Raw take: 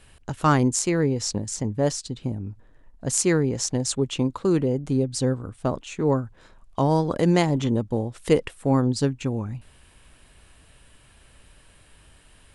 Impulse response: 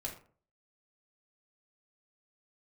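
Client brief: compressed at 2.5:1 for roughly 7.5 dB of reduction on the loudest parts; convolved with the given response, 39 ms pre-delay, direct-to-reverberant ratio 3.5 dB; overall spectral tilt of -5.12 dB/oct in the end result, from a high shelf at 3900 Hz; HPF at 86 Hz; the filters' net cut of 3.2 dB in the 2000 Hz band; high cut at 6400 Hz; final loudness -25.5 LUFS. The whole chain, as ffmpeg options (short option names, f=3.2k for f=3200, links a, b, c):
-filter_complex "[0:a]highpass=86,lowpass=6.4k,equalizer=f=2k:t=o:g=-6,highshelf=f=3.9k:g=8,acompressor=threshold=-25dB:ratio=2.5,asplit=2[a][b];[1:a]atrim=start_sample=2205,adelay=39[c];[b][c]afir=irnorm=-1:irlink=0,volume=-3dB[d];[a][d]amix=inputs=2:normalize=0,volume=1dB"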